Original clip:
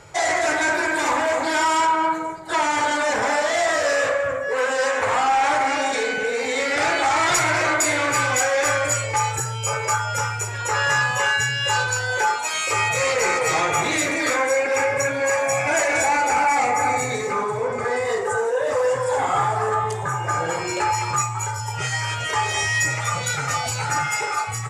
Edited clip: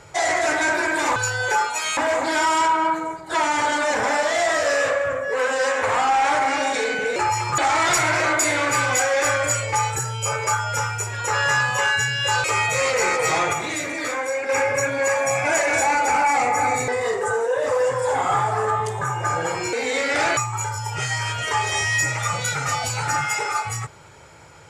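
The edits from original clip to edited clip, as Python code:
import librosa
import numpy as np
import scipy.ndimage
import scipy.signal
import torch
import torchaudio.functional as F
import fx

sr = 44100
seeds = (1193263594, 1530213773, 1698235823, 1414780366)

y = fx.edit(x, sr, fx.swap(start_s=6.35, length_s=0.64, other_s=20.77, other_length_s=0.42),
    fx.move(start_s=11.85, length_s=0.81, to_s=1.16),
    fx.clip_gain(start_s=13.75, length_s=0.96, db=-5.0),
    fx.cut(start_s=17.1, length_s=0.82), tone=tone)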